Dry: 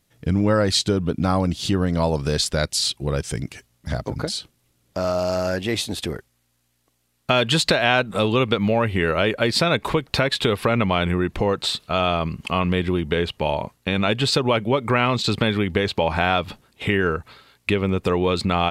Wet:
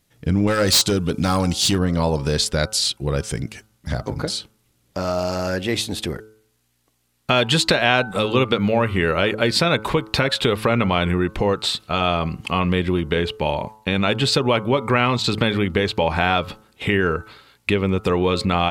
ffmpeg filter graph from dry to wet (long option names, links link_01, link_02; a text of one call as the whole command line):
ffmpeg -i in.wav -filter_complex "[0:a]asettb=1/sr,asplit=3[link_01][link_02][link_03];[link_01]atrim=end=0.474[link_04];[link_02]atrim=start=0.47:end=1.79,asetpts=PTS-STARTPTS,afade=type=in:duration=0.004:curve=qsin,afade=type=out:start_time=1.316:duration=0.004:curve=qsin,equalizer=frequency=8000:width=0.35:gain=12,asoftclip=type=hard:threshold=-14dB[link_05];[link_03]atrim=start=1.786[link_06];[link_04][link_05]acrossfade=duration=0.004:curve1=hsin:curve2=qsin[link_07];[link_07][link_06]acrossfade=duration=0.004:curve1=qsin:curve2=hsin,bandreject=frequency=650:width=21,bandreject=frequency=108.4:width_type=h:width=4,bandreject=frequency=216.8:width_type=h:width=4,bandreject=frequency=325.2:width_type=h:width=4,bandreject=frequency=433.6:width_type=h:width=4,bandreject=frequency=542:width_type=h:width=4,bandreject=frequency=650.4:width_type=h:width=4,bandreject=frequency=758.8:width_type=h:width=4,bandreject=frequency=867.2:width_type=h:width=4,bandreject=frequency=975.6:width_type=h:width=4,bandreject=frequency=1084:width_type=h:width=4,bandreject=frequency=1192.4:width_type=h:width=4,bandreject=frequency=1300.8:width_type=h:width=4,bandreject=frequency=1409.2:width_type=h:width=4,bandreject=frequency=1517.6:width_type=h:width=4,volume=1.5dB" out.wav